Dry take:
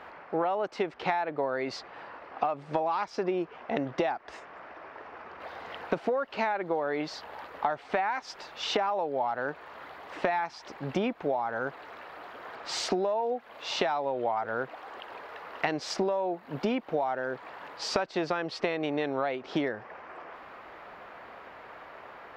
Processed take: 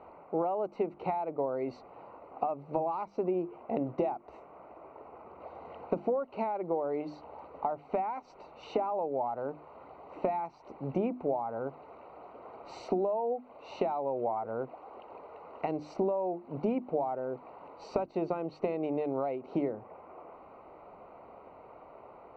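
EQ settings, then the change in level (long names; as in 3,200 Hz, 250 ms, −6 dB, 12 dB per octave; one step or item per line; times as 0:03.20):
moving average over 26 samples
mains-hum notches 50/100/150/200/250/300/350 Hz
0.0 dB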